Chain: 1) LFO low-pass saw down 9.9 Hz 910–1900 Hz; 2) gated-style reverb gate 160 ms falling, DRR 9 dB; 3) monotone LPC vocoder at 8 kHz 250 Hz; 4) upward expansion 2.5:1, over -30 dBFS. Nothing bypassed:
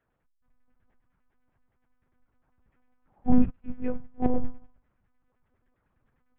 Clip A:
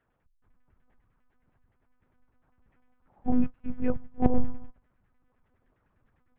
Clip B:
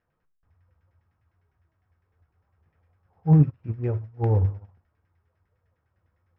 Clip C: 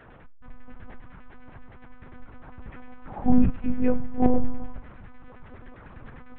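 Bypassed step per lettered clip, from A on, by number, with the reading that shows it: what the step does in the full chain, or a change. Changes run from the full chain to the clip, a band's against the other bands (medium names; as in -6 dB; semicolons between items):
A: 2, crest factor change +3.5 dB; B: 3, 125 Hz band +18.0 dB; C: 4, 250 Hz band -1.5 dB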